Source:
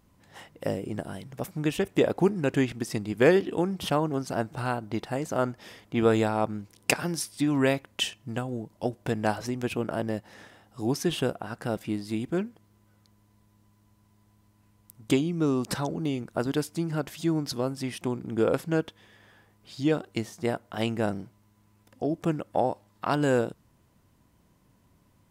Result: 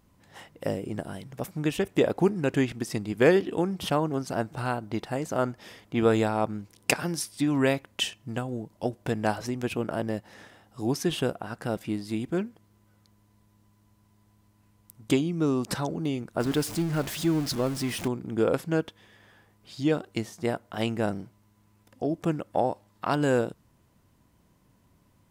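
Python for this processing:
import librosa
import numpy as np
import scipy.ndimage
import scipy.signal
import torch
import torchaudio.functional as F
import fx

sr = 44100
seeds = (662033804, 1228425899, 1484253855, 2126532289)

y = fx.zero_step(x, sr, step_db=-32.5, at=(16.4, 18.08))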